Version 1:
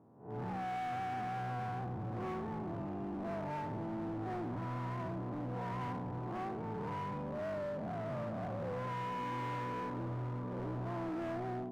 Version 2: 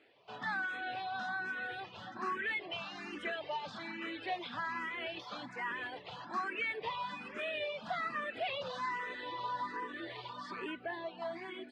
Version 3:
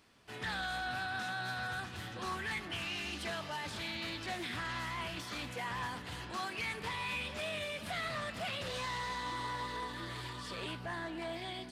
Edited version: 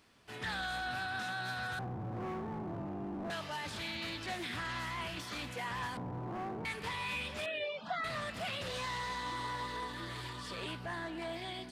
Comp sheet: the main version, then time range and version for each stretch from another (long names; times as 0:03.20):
3
0:01.79–0:03.30: punch in from 1
0:05.97–0:06.65: punch in from 1
0:07.46–0:08.04: punch in from 2